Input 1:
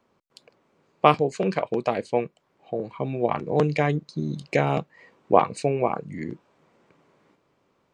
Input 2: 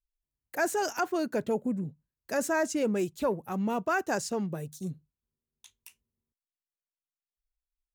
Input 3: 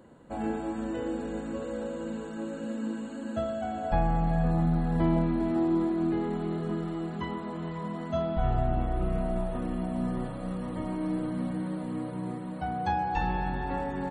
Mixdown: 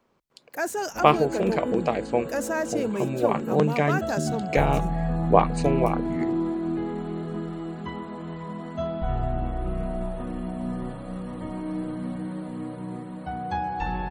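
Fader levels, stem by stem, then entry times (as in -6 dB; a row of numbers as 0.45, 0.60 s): -0.5, 0.0, 0.0 dB; 0.00, 0.00, 0.65 s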